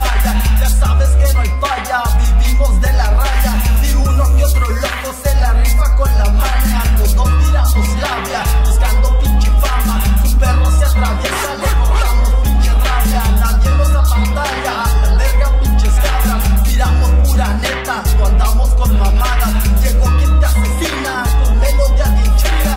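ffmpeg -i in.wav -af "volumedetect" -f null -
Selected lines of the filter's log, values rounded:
mean_volume: -10.6 dB
max_volume: -2.3 dB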